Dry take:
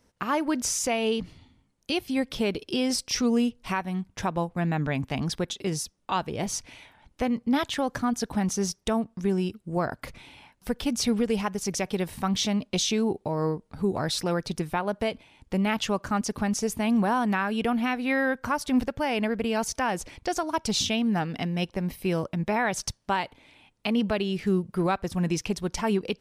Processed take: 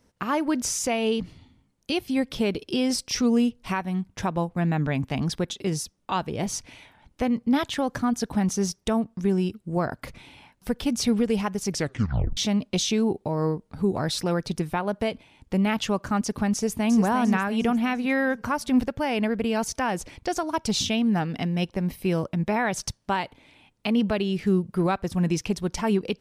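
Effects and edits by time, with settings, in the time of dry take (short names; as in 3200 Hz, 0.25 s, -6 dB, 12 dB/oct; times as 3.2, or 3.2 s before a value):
11.71 tape stop 0.66 s
16.54–17.01 echo throw 0.35 s, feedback 45%, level -7 dB
whole clip: bell 160 Hz +3 dB 2.7 oct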